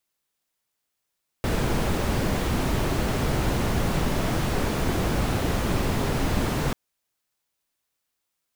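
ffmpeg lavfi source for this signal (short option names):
-f lavfi -i "anoisesrc=c=brown:a=0.313:d=5.29:r=44100:seed=1"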